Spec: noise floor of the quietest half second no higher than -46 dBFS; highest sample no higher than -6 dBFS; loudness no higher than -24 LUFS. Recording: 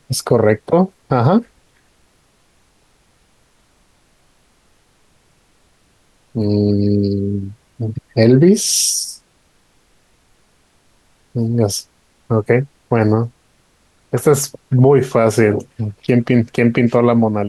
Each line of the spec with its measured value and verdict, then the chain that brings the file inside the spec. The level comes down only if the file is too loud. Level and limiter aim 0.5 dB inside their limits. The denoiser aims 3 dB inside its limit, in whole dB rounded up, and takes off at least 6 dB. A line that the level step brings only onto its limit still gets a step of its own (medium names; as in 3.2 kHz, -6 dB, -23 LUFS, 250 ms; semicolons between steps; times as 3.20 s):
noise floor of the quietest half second -57 dBFS: pass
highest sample -1.5 dBFS: fail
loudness -15.5 LUFS: fail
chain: trim -9 dB